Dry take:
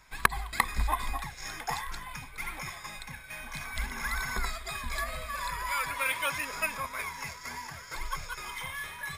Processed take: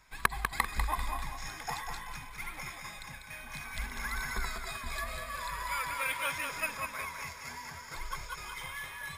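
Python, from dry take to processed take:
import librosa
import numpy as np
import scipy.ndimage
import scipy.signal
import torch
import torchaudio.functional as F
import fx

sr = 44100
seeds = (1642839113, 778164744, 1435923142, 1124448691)

y = fx.echo_feedback(x, sr, ms=196, feedback_pct=37, wet_db=-6.0)
y = F.gain(torch.from_numpy(y), -4.0).numpy()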